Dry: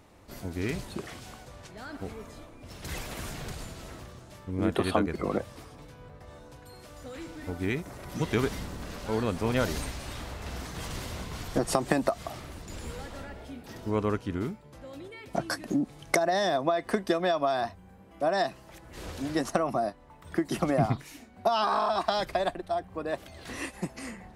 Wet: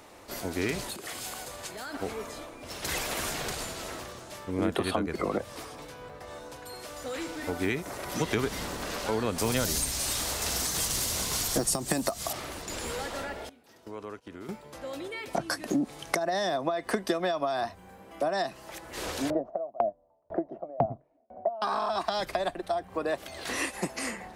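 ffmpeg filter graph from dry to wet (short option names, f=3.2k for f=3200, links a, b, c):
-filter_complex "[0:a]asettb=1/sr,asplit=3[a][b][c];[a]atrim=end=0.894[d];[b]atrim=start=0.89:end=1.94,asetpts=PTS-STARTPTS,afade=t=in:d=0.004:c=qsin,afade=t=out:st=1.046:d=0.004:c=qsin,bandreject=f=5.7k:w=13,acompressor=threshold=-42dB:ratio=16:attack=3.2:release=140:knee=1:detection=peak,highshelf=f=6.7k:g=10.5[e];[c]atrim=start=1.936[f];[d][e]acrossfade=d=0.004:c1=hsin:c2=qsin[g];[g][f]acrossfade=d=0.004:c1=qsin:c2=hsin,asettb=1/sr,asplit=3[h][i][j];[h]atrim=end=9.384[k];[i]atrim=start=9.38:end=12.33,asetpts=PTS-STARTPTS,afade=t=in:d=0.004:c=qsin,afade=t=out:st=2.946:d=0.004:c=qsin,bass=f=250:g=2,treble=f=4k:g=14,acrusher=bits=7:mode=log:mix=0:aa=0.000001[l];[j]atrim=start=12.326[m];[k][l]acrossfade=d=0.004:c1=hsin:c2=qsin[n];[n][m]acrossfade=d=0.004:c1=qsin:c2=hsin,asettb=1/sr,asplit=3[o][p][q];[o]atrim=end=13.494[r];[p]atrim=start=13.49:end=14.49,asetpts=PTS-STARTPTS,afade=t=in:d=0.004:c=qsin,afade=t=out:st=0.996:d=0.004:c=qsin,agate=range=-19dB:threshold=-36dB:ratio=16:release=100:detection=peak,highpass=53,acompressor=threshold=-45dB:ratio=4:attack=3.2:release=140:knee=1:detection=peak[s];[q]atrim=start=14.486[t];[r][s]acrossfade=d=0.004:c1=hsin:c2=qsin[u];[u][t]acrossfade=d=0.004:c1=qsin:c2=hsin,asettb=1/sr,asplit=3[v][w][x];[v]atrim=end=19.304[y];[w]atrim=start=19.3:end=21.62,asetpts=PTS-STARTPTS,afade=t=in:d=0.004:c=qsin,afade=t=out:st=2.316:d=0.004:c=qsin,lowpass=f=640:t=q:w=7.2,aeval=exprs='val(0)*pow(10,-37*if(lt(mod(2*n/s,1),2*abs(2)/1000),1-mod(2*n/s,1)/(2*abs(2)/1000),(mod(2*n/s,1)-2*abs(2)/1000)/(1-2*abs(2)/1000))/20)':c=same[z];[x]atrim=start=21.616[aa];[y][z]acrossfade=d=0.004:c1=hsin:c2=qsin[ab];[ab][aa]acrossfade=d=0.004:c1=qsin:c2=hsin,bass=f=250:g=-12,treble=f=4k:g=2,acrossover=split=220[ac][ad];[ad]acompressor=threshold=-35dB:ratio=6[ae];[ac][ae]amix=inputs=2:normalize=0,volume=8dB"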